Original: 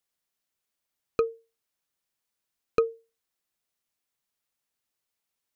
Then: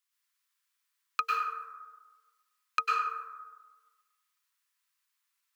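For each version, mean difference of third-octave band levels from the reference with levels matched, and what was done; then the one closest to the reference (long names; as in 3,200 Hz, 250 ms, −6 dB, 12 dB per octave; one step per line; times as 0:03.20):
14.0 dB: noise gate −59 dBFS, range −6 dB
elliptic high-pass filter 1,000 Hz, stop band 40 dB
in parallel at −2 dB: downward compressor, threshold −30 dBFS, peak gain reduction 3 dB
on the sum: dense smooth reverb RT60 1.3 s, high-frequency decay 0.4×, pre-delay 90 ms, DRR −5 dB
level +1.5 dB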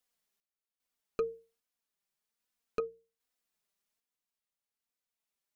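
1.5 dB: mains-hum notches 60/120/180 Hz
flanger 1.2 Hz, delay 3.9 ms, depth 1.3 ms, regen −5%
sample-and-hold tremolo 2.5 Hz, depth 80%
brickwall limiter −25.5 dBFS, peak gain reduction 10 dB
level +3.5 dB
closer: second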